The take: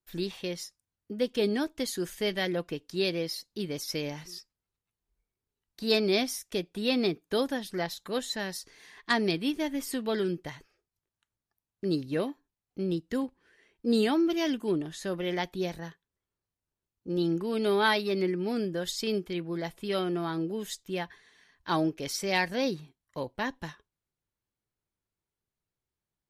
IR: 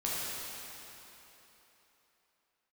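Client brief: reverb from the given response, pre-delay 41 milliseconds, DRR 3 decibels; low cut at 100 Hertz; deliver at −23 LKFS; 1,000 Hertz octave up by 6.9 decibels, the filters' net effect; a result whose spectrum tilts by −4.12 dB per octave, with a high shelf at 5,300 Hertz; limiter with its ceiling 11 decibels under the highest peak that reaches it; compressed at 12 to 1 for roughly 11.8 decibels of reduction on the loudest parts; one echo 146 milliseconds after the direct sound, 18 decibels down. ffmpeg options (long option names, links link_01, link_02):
-filter_complex "[0:a]highpass=100,equalizer=frequency=1000:width_type=o:gain=8.5,highshelf=frequency=5300:gain=4.5,acompressor=threshold=-28dB:ratio=12,alimiter=level_in=1dB:limit=-24dB:level=0:latency=1,volume=-1dB,aecho=1:1:146:0.126,asplit=2[link_01][link_02];[1:a]atrim=start_sample=2205,adelay=41[link_03];[link_02][link_03]afir=irnorm=-1:irlink=0,volume=-10dB[link_04];[link_01][link_04]amix=inputs=2:normalize=0,volume=11dB"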